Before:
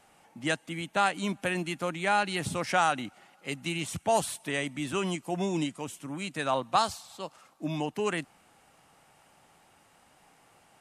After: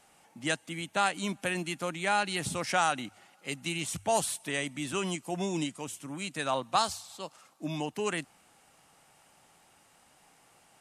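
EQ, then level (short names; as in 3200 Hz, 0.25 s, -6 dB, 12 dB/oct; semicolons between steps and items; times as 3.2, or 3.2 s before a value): bell 8000 Hz +5.5 dB 2.3 oct; notches 50/100 Hz; -2.5 dB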